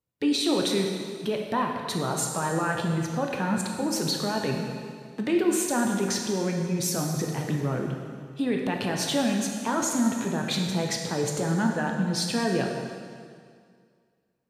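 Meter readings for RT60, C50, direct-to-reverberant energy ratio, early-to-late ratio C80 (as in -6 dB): 2.1 s, 3.0 dB, 1.0 dB, 4.5 dB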